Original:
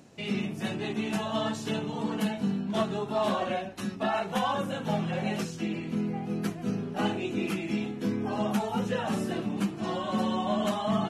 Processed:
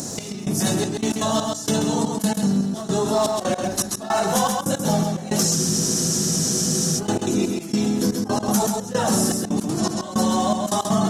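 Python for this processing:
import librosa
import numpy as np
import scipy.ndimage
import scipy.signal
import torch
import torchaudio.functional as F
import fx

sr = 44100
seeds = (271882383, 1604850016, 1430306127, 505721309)

p1 = np.clip(x, -10.0 ** (-31.0 / 20.0), 10.0 ** (-31.0 / 20.0))
p2 = x + (p1 * 10.0 ** (-8.0 / 20.0))
p3 = fx.high_shelf_res(p2, sr, hz=3800.0, db=13.5, q=3.0)
p4 = fx.step_gate(p3, sr, bpm=161, pattern='xx...xxxx..x.', floor_db=-24.0, edge_ms=4.5)
p5 = fx.peak_eq(p4, sr, hz=5100.0, db=-8.5, octaves=0.88)
p6 = p5 + fx.echo_single(p5, sr, ms=133, db=-8.5, dry=0)
p7 = fx.spec_freeze(p6, sr, seeds[0], at_s=5.57, hold_s=1.41)
p8 = fx.env_flatten(p7, sr, amount_pct=50)
y = p8 * 10.0 ** (5.0 / 20.0)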